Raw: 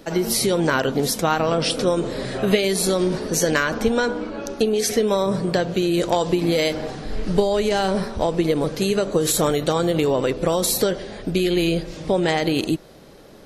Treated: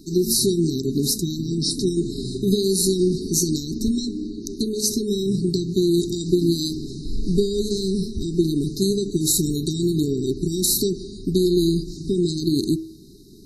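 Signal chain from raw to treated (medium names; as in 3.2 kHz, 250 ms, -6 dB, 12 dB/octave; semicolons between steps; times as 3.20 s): brick-wall FIR band-stop 420–3700 Hz; de-hum 107.2 Hz, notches 4; trim +2 dB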